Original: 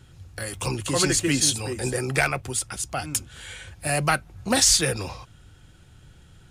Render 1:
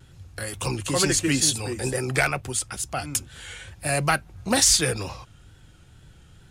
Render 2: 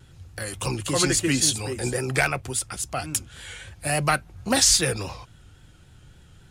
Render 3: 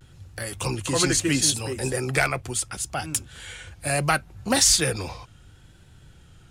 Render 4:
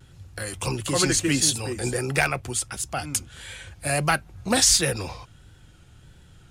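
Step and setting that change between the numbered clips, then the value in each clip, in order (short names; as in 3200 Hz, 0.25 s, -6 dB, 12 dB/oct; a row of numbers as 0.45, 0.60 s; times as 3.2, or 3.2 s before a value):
vibrato, rate: 2.2, 3.6, 0.73, 1.5 Hz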